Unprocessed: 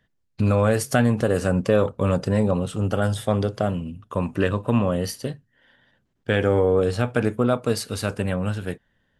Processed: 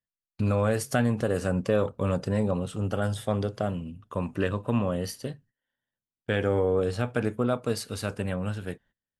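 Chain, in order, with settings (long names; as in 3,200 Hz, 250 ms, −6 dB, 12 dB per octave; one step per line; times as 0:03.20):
noise gate −50 dBFS, range −23 dB
level −5.5 dB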